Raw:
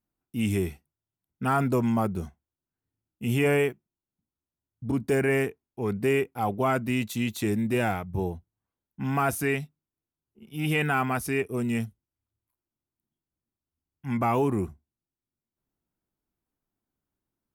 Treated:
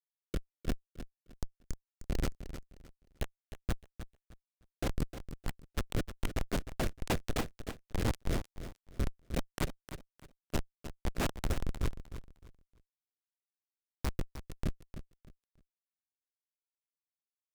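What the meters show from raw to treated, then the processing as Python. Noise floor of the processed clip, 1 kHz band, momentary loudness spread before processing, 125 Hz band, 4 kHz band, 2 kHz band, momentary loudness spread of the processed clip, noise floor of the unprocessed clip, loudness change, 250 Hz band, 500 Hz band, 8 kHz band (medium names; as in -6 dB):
under -85 dBFS, -15.0 dB, 11 LU, -8.5 dB, -4.5 dB, -14.0 dB, 15 LU, under -85 dBFS, -12.0 dB, -13.0 dB, -15.0 dB, -6.0 dB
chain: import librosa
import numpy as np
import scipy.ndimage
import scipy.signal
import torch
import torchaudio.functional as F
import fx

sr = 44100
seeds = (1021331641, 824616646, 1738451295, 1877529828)

p1 = fx.spec_flatten(x, sr, power=0.11)
p2 = scipy.signal.sosfilt(scipy.signal.butter(4, 220.0, 'highpass', fs=sr, output='sos'), p1)
p3 = fx.peak_eq(p2, sr, hz=7700.0, db=3.0, octaves=0.43)
p4 = fx.hum_notches(p3, sr, base_hz=50, count=7)
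p5 = fx.over_compress(p4, sr, threshold_db=-37.0, ratio=-1.0)
p6 = fx.schmitt(p5, sr, flips_db=-23.0)
p7 = fx.rotary_switch(p6, sr, hz=0.65, then_hz=6.0, switch_at_s=2.64)
p8 = p7 + fx.echo_feedback(p7, sr, ms=307, feedback_pct=25, wet_db=-11.5, dry=0)
y = p8 * librosa.db_to_amplitude(11.5)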